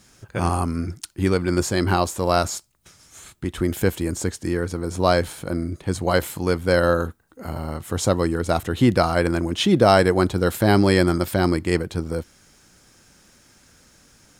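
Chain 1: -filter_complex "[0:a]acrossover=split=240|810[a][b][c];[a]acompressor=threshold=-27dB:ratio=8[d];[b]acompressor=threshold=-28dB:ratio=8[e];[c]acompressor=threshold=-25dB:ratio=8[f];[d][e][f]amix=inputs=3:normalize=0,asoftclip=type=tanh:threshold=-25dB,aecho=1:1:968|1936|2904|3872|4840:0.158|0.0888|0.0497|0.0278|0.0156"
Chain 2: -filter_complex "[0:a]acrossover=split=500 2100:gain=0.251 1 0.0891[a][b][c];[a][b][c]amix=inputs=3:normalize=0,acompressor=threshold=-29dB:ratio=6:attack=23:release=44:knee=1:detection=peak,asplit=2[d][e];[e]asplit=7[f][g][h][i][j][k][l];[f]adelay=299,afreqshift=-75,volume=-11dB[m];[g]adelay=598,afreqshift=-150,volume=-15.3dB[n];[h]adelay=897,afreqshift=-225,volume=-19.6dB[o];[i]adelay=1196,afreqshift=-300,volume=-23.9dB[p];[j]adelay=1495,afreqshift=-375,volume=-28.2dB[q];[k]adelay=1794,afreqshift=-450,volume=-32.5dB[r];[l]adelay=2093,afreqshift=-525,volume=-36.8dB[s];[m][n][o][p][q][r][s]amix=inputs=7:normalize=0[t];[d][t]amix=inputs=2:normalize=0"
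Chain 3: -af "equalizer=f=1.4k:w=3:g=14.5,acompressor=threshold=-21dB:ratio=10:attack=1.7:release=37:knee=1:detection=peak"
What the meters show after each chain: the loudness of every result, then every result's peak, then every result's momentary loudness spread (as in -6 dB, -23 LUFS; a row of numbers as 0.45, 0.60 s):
-31.5, -31.0, -27.0 LUFS; -23.0, -11.5, -10.0 dBFS; 15, 11, 6 LU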